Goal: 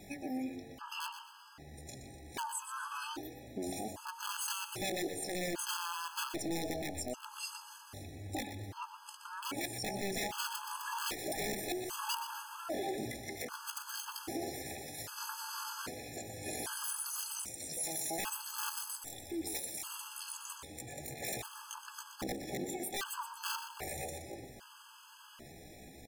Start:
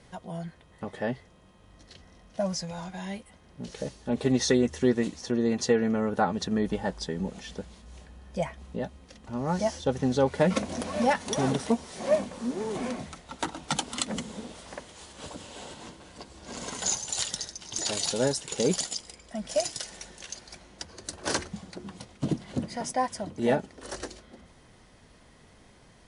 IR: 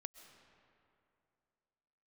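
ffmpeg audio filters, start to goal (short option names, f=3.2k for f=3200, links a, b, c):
-filter_complex "[0:a]bandreject=f=60:t=h:w=6,bandreject=f=120:t=h:w=6,bandreject=f=180:t=h:w=6,bandreject=f=240:t=h:w=6,bandreject=f=300:t=h:w=6,bandreject=f=360:t=h:w=6,bandreject=f=420:t=h:w=6,bandreject=f=480:t=h:w=6,bandreject=f=540:t=h:w=6,bandreject=f=600:t=h:w=6,aeval=exprs='(mod(11.2*val(0)+1,2)-1)/11.2':c=same,lowshelf=f=75:g=-3,acompressor=threshold=-35dB:ratio=16,alimiter=level_in=9.5dB:limit=-24dB:level=0:latency=1:release=27,volume=-9.5dB,highshelf=f=3k:g=2.5,asetrate=68011,aresample=44100,atempo=0.64842,asplit=6[a][b][c][d][e][f];[b]adelay=124,afreqshift=95,volume=-16.5dB[g];[c]adelay=248,afreqshift=190,volume=-21.5dB[h];[d]adelay=372,afreqshift=285,volume=-26.6dB[i];[e]adelay=496,afreqshift=380,volume=-31.6dB[j];[f]adelay=620,afreqshift=475,volume=-36.6dB[k];[a][g][h][i][j][k]amix=inputs=6:normalize=0,asplit=2[l][m];[1:a]atrim=start_sample=2205,adelay=122[n];[m][n]afir=irnorm=-1:irlink=0,volume=-5.5dB[o];[l][o]amix=inputs=2:normalize=0,afftfilt=real='re*gt(sin(2*PI*0.63*pts/sr)*(1-2*mod(floor(b*sr/1024/850),2)),0)':imag='im*gt(sin(2*PI*0.63*pts/sr)*(1-2*mod(floor(b*sr/1024/850),2)),0)':win_size=1024:overlap=0.75,volume=5dB"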